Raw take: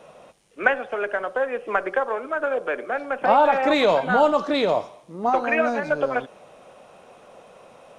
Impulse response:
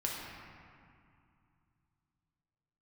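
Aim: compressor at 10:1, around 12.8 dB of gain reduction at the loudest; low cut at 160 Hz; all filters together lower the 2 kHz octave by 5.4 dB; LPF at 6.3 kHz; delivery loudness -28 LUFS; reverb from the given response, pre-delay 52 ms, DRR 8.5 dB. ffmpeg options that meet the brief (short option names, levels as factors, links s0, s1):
-filter_complex "[0:a]highpass=160,lowpass=6300,equalizer=f=2000:t=o:g=-8,acompressor=threshold=0.0447:ratio=10,asplit=2[s0][s1];[1:a]atrim=start_sample=2205,adelay=52[s2];[s1][s2]afir=irnorm=-1:irlink=0,volume=0.237[s3];[s0][s3]amix=inputs=2:normalize=0,volume=1.58"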